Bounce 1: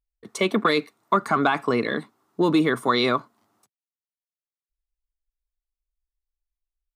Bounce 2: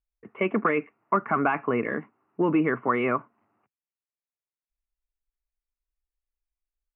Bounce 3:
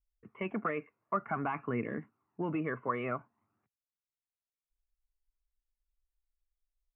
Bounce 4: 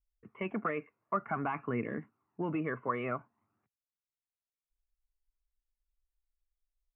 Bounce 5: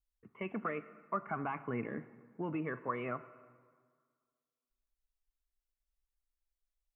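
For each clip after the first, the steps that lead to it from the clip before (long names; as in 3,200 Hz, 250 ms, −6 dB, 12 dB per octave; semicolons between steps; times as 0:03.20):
Butterworth low-pass 2,800 Hz 96 dB per octave; level −3 dB
low-shelf EQ 130 Hz +11 dB; flanger 0.53 Hz, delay 0.3 ms, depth 1.7 ms, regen +41%; level −6.5 dB
no processing that can be heard
convolution reverb RT60 1.8 s, pre-delay 28 ms, DRR 15 dB; level −3.5 dB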